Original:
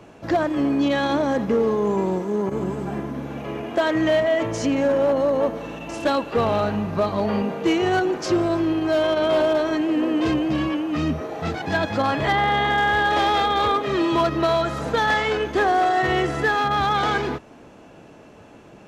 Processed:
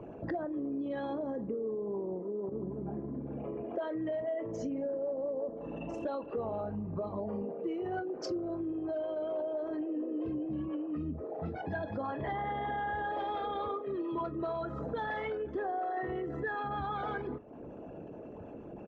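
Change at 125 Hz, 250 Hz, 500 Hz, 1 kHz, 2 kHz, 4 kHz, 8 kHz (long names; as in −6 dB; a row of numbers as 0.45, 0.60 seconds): −14.0 dB, −14.0 dB, −14.0 dB, −15.5 dB, −19.0 dB, −25.0 dB, below −20 dB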